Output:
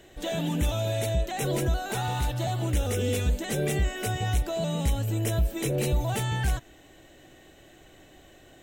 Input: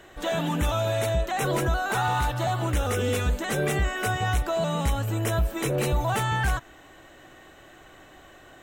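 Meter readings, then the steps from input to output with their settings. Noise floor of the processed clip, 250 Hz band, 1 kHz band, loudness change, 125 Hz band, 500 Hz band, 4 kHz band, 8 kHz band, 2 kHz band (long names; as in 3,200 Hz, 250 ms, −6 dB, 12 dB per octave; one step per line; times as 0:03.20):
−54 dBFS, −0.5 dB, −7.0 dB, −2.0 dB, 0.0 dB, −3.0 dB, −1.5 dB, −0.5 dB, −7.0 dB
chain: parametric band 1,200 Hz −12.5 dB 1.2 octaves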